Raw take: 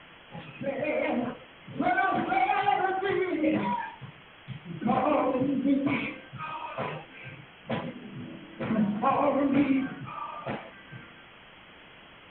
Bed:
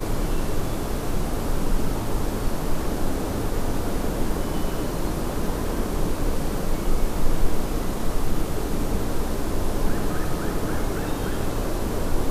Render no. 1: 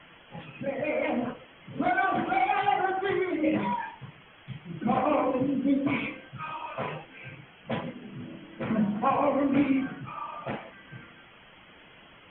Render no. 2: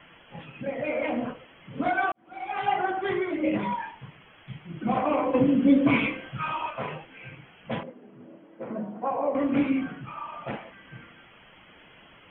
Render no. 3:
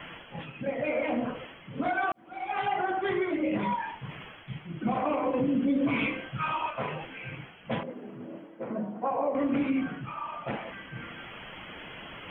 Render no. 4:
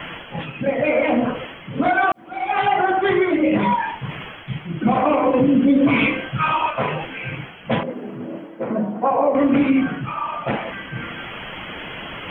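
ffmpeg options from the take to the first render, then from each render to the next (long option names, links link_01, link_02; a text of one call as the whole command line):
ffmpeg -i in.wav -af "afftdn=noise_reduction=6:noise_floor=-52" out.wav
ffmpeg -i in.wav -filter_complex "[0:a]asplit=3[link_01][link_02][link_03];[link_01]afade=type=out:start_time=5.33:duration=0.02[link_04];[link_02]acontrast=60,afade=type=in:start_time=5.33:duration=0.02,afade=type=out:start_time=6.69:duration=0.02[link_05];[link_03]afade=type=in:start_time=6.69:duration=0.02[link_06];[link_04][link_05][link_06]amix=inputs=3:normalize=0,asettb=1/sr,asplit=3[link_07][link_08][link_09];[link_07]atrim=end=7.834[link_10];[link_08]atrim=start=7.83:end=9.35,asetpts=PTS-STARTPTS,afade=type=in:duration=0.004:curve=qsin,afade=type=out:start_time=1.516:duration=0.004:curve=qsin,bandpass=frequency=530:width_type=q:width=1.2[link_11];[link_09]atrim=start=9.346[link_12];[link_10][link_11]acrossfade=duration=0.004:curve1=hsin:curve2=qsin[link_13];[link_13][link_12]acrossfade=duration=0.004:curve1=qsin:curve2=hsin,asplit=2[link_14][link_15];[link_14]atrim=end=2.12,asetpts=PTS-STARTPTS,afade=type=out:start_time=2.116:duration=0.004:curve=hsin[link_16];[link_15]atrim=start=2.12,asetpts=PTS-STARTPTS,afade=type=in:duration=0.57:curve=qua[link_17];[link_16][link_17]concat=n=2:v=0:a=1" out.wav
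ffmpeg -i in.wav -af "alimiter=limit=-19.5dB:level=0:latency=1:release=83,areverse,acompressor=mode=upward:threshold=-33dB:ratio=2.5,areverse" out.wav
ffmpeg -i in.wav -af "volume=11dB" out.wav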